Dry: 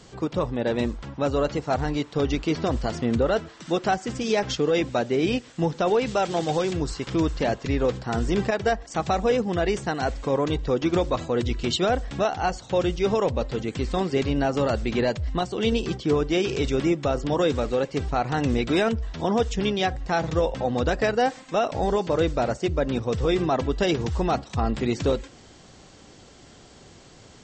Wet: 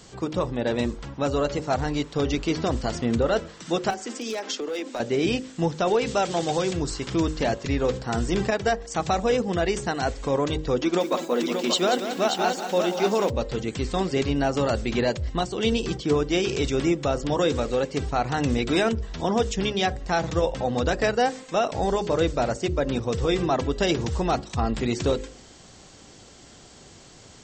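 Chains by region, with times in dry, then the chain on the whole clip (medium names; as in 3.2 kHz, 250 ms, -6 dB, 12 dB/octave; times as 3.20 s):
3.90–5.00 s: steep high-pass 220 Hz 72 dB/octave + overload inside the chain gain 17.5 dB + compression, threshold -27 dBFS
10.81–13.30 s: brick-wall FIR high-pass 170 Hz + delay 582 ms -6 dB + bit-crushed delay 185 ms, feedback 35%, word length 8-bit, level -9 dB
whole clip: treble shelf 7 kHz +9.5 dB; de-hum 51.79 Hz, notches 11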